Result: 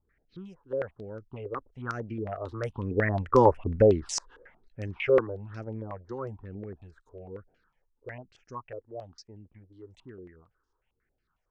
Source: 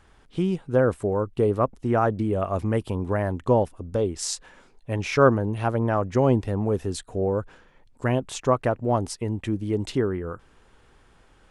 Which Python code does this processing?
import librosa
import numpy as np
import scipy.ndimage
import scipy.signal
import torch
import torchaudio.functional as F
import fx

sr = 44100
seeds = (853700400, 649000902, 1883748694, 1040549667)

y = fx.doppler_pass(x, sr, speed_mps=14, closest_m=3.2, pass_at_s=3.6)
y = fx.phaser_stages(y, sr, stages=6, low_hz=170.0, high_hz=1100.0, hz=1.1, feedback_pct=5)
y = fx.filter_held_lowpass(y, sr, hz=11.0, low_hz=480.0, high_hz=5600.0)
y = y * 10.0 ** (6.5 / 20.0)